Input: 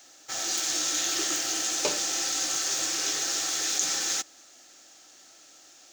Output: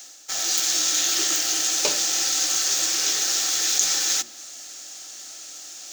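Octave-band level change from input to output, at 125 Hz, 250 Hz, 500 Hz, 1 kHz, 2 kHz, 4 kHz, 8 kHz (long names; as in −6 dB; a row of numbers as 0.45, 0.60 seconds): can't be measured, 0.0 dB, +1.0 dB, +2.0 dB, +3.5 dB, +6.0 dB, +6.0 dB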